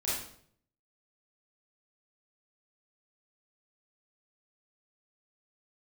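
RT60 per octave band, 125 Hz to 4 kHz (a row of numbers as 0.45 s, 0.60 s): 0.90 s, 0.70 s, 0.65 s, 0.55 s, 0.50 s, 0.50 s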